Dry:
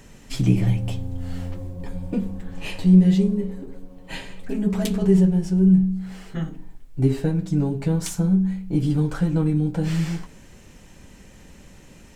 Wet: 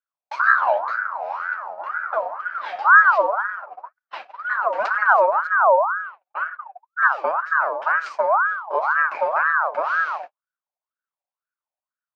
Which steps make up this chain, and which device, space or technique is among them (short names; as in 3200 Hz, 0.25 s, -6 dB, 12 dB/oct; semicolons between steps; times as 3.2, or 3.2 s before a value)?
gate -33 dBFS, range -51 dB; 5.47–7.01 air absorption 460 m; voice changer toy (ring modulator with a swept carrier 1100 Hz, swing 35%, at 2 Hz; speaker cabinet 570–4200 Hz, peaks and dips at 610 Hz +8 dB, 1500 Hz +5 dB, 2400 Hz +4 dB, 3500 Hz -9 dB); gain +1 dB